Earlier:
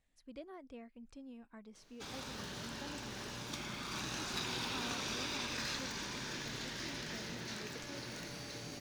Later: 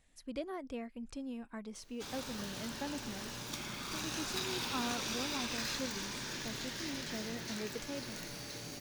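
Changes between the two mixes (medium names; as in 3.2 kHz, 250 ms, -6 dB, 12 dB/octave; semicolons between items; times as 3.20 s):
speech +9.0 dB; master: add treble shelf 9.7 kHz +12 dB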